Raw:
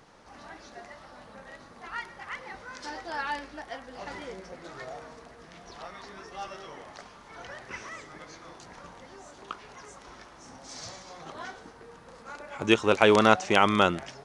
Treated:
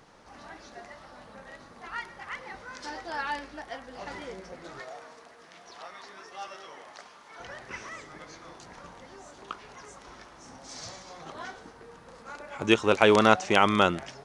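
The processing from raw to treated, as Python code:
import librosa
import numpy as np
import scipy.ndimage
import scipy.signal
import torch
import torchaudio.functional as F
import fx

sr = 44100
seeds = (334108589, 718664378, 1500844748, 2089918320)

y = fx.highpass(x, sr, hz=540.0, slope=6, at=(4.81, 7.4))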